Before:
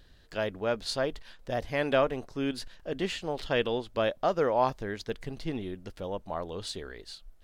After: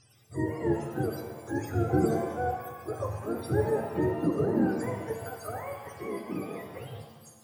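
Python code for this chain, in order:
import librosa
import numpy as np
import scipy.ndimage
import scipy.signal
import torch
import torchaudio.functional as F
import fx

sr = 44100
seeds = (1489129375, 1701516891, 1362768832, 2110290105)

y = fx.octave_mirror(x, sr, pivot_hz=450.0)
y = fx.rev_shimmer(y, sr, seeds[0], rt60_s=1.3, semitones=7, shimmer_db=-8, drr_db=3.5)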